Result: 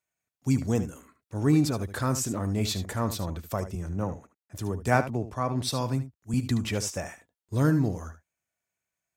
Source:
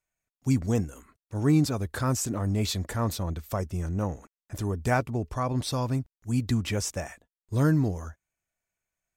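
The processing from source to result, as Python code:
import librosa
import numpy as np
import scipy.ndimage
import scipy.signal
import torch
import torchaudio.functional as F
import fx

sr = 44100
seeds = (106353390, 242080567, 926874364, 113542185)

y = scipy.signal.sosfilt(scipy.signal.butter(2, 86.0, 'highpass', fs=sr, output='sos'), x)
y = y + 10.0 ** (-12.0 / 20.0) * np.pad(y, (int(74 * sr / 1000.0), 0))[:len(y)]
y = fx.band_widen(y, sr, depth_pct=40, at=(3.75, 6.34))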